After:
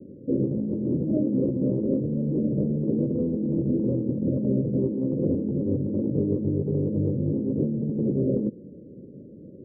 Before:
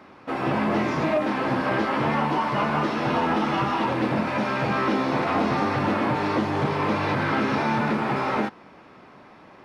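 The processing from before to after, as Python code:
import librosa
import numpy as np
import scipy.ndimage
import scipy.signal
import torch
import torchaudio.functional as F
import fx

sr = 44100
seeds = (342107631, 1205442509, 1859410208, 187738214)

y = scipy.signal.sosfilt(scipy.signal.butter(16, 550.0, 'lowpass', fs=sr, output='sos'), x)
y = fx.peak_eq(y, sr, hz=150.0, db=7.5, octaves=2.3)
y = fx.over_compress(y, sr, threshold_db=-25.0, ratio=-1.0)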